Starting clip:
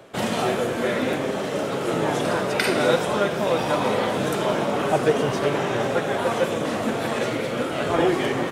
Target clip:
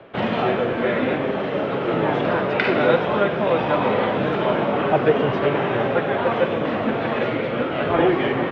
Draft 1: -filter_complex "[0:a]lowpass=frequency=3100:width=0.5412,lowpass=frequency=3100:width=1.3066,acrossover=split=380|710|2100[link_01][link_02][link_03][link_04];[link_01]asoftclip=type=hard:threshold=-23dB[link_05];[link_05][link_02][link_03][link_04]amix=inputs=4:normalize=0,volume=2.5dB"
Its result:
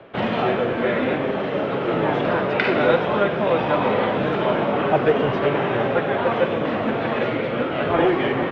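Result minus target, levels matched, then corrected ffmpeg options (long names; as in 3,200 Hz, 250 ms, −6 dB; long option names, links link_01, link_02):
hard clipping: distortion +26 dB
-filter_complex "[0:a]lowpass=frequency=3100:width=0.5412,lowpass=frequency=3100:width=1.3066,acrossover=split=380|710|2100[link_01][link_02][link_03][link_04];[link_01]asoftclip=type=hard:threshold=-15.5dB[link_05];[link_05][link_02][link_03][link_04]amix=inputs=4:normalize=0,volume=2.5dB"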